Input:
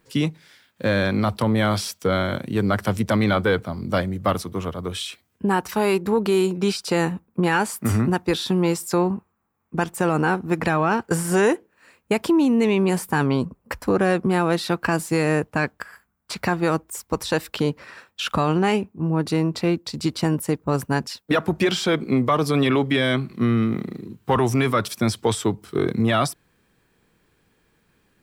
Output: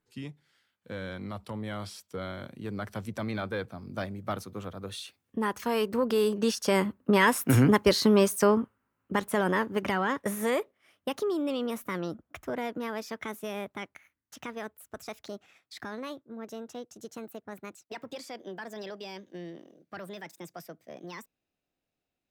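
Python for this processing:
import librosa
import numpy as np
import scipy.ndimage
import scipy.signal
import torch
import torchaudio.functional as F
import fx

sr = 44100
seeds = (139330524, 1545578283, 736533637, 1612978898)

y = fx.speed_glide(x, sr, from_pct=90, to_pct=163)
y = fx.doppler_pass(y, sr, speed_mps=8, closest_m=7.6, pass_at_s=7.81)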